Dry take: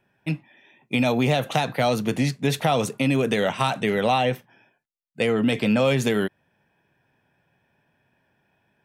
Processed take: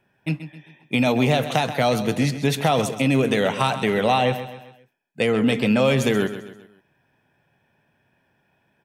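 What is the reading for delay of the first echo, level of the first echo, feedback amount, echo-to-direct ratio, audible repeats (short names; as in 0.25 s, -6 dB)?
0.132 s, -12.0 dB, 44%, -11.0 dB, 4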